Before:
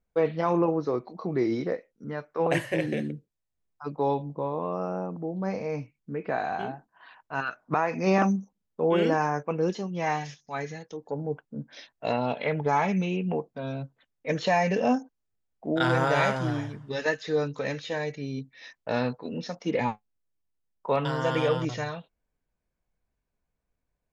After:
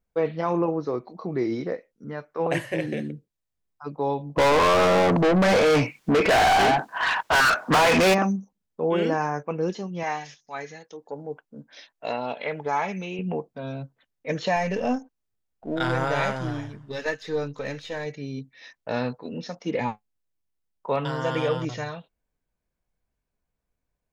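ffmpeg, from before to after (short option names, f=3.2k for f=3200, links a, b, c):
-filter_complex "[0:a]asplit=3[a][b][c];[a]afade=t=out:st=4.36:d=0.02[d];[b]asplit=2[e][f];[f]highpass=f=720:p=1,volume=38dB,asoftclip=type=tanh:threshold=-11.5dB[g];[e][g]amix=inputs=2:normalize=0,lowpass=f=5.6k:p=1,volume=-6dB,afade=t=in:st=4.36:d=0.02,afade=t=out:st=8.13:d=0.02[h];[c]afade=t=in:st=8.13:d=0.02[i];[d][h][i]amix=inputs=3:normalize=0,asettb=1/sr,asplit=3[j][k][l];[j]atrim=end=10.034[m];[k]atrim=start=10.03:end=13.19,asetpts=PTS-STARTPTS,afade=t=in:d=0.004:c=qsin,afade=t=out:st=3.156:d=0.004:c=qsin,equalizer=f=63:w=0.35:g=-14[n];[l]atrim=start=13.186[o];[m][n]acrossfade=d=0.004:c1=hsin:c2=qsin[p];[p][o]acrossfade=d=0.004:c1=qsin:c2=hsin,asettb=1/sr,asplit=3[q][r][s];[q]atrim=end=14.564[t];[r]atrim=start=14.56:end=18.06,asetpts=PTS-STARTPTS,afade=t=in:d=0.004:c=qsin,afade=t=out:st=3.496:d=0.004:c=qsin,aeval=exprs='if(lt(val(0),0),0.708*val(0),val(0))':c=same[u];[s]atrim=start=18.056[v];[t][u]acrossfade=d=0.004:c1=hsin:c2=qsin[w];[w][v]acrossfade=d=0.004:c1=qsin:c2=hsin"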